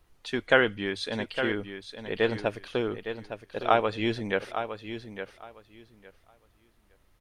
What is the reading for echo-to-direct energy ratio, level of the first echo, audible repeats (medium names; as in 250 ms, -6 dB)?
-9.5 dB, -9.5 dB, 2